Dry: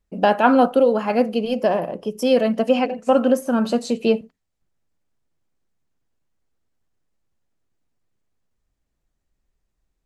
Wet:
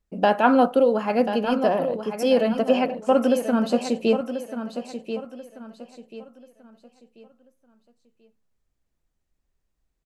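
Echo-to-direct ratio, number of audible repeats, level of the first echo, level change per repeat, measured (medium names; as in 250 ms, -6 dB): -9.0 dB, 3, -9.5 dB, -10.0 dB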